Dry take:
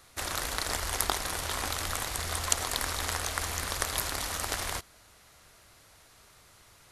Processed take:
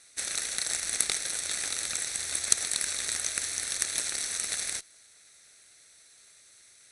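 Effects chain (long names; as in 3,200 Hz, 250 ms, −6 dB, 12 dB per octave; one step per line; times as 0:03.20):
lower of the sound and its delayed copy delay 0.5 ms
RIAA equalisation recording
downsampling to 22,050 Hz
level −4 dB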